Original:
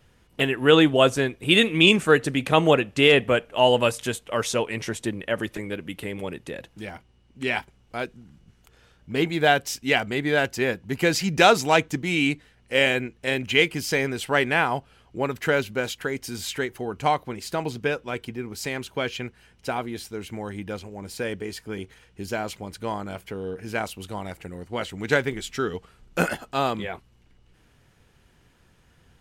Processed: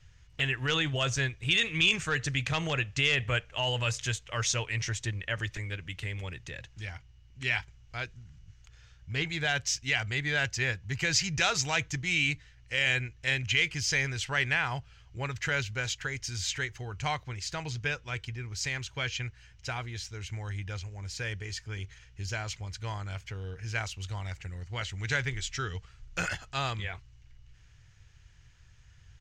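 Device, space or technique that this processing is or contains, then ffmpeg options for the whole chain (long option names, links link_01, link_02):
clipper into limiter: -filter_complex "[0:a]asettb=1/sr,asplit=3[link_01][link_02][link_03];[link_01]atrim=end=7.564[link_04];[link_02]atrim=start=7.56:end=9.29,asetpts=PTS-STARTPTS,afade=type=in:duration=0.004:curve=qsin,afade=type=out:start_time=1.726:duration=0.004:curve=qsin,acrossover=split=6900[link_05][link_06];[link_06]acompressor=threshold=-59dB:ratio=4:attack=1:release=60[link_07];[link_05][link_07]amix=inputs=2:normalize=0[link_08];[link_03]atrim=start=9.286[link_09];[link_04][link_08]acrossfade=duration=0.004:curve1=hsin:curve2=qsin[link_10];[link_10][link_09]acrossfade=duration=0.004:curve1=qsin:curve2=hsin,asoftclip=type=hard:threshold=-7dB,alimiter=limit=-12dB:level=0:latency=1:release=30,firequalizer=gain_entry='entry(110,0);entry(210,-22);entry(1800,-6);entry(3600,-7);entry(6500,-1);entry(10000,-24)':delay=0.05:min_phase=1,volume=5dB"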